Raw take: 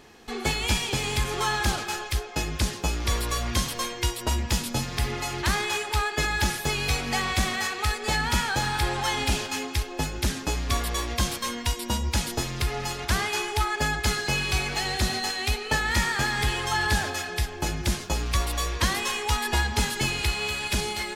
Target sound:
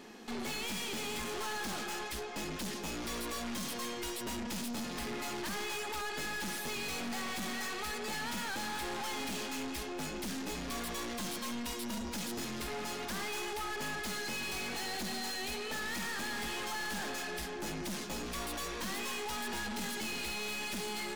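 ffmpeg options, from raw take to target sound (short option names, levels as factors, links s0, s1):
-af "lowshelf=f=150:t=q:w=3:g=-11,aeval=exprs='(tanh(70.8*val(0)+0.4)-tanh(0.4))/70.8':c=same"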